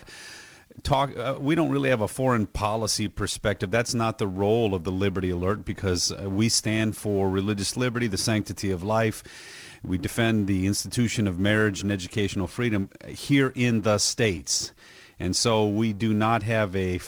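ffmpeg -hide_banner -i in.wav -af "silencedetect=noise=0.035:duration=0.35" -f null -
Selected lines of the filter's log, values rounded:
silence_start: 0.00
silence_end: 0.85 | silence_duration: 0.85
silence_start: 9.18
silence_end: 9.85 | silence_duration: 0.67
silence_start: 14.66
silence_end: 15.21 | silence_duration: 0.54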